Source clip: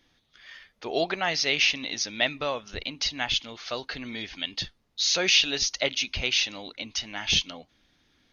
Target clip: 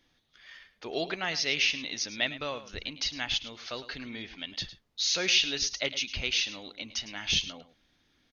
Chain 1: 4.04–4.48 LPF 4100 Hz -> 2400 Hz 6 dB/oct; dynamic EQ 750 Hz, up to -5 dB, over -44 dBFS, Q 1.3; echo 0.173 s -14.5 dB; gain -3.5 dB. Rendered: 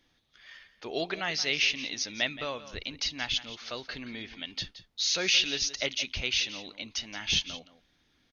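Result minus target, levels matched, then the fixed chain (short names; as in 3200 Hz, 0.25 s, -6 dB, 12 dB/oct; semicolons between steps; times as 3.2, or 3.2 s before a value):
echo 67 ms late
4.04–4.48 LPF 4100 Hz -> 2400 Hz 6 dB/oct; dynamic EQ 750 Hz, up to -5 dB, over -44 dBFS, Q 1.3; echo 0.106 s -14.5 dB; gain -3.5 dB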